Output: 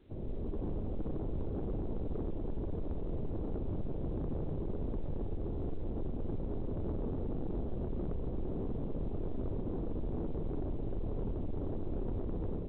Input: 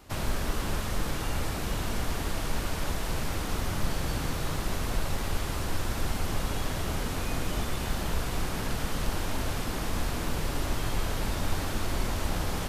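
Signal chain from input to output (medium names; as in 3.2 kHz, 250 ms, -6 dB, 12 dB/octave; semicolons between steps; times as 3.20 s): level rider gain up to 8 dB; peak limiter -13.5 dBFS, peak gain reduction 6 dB; four-pole ladder low-pass 500 Hz, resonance 40%; saturation -31 dBFS, distortion -12 dB; on a send: thinning echo 280 ms, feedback 22%, high-pass 210 Hz, level -18.5 dB; on the sum: A-law 64 kbps 8 kHz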